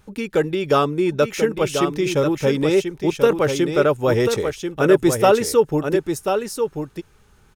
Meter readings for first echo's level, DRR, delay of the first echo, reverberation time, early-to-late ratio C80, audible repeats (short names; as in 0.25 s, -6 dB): -6.5 dB, none, 1.038 s, none, none, 1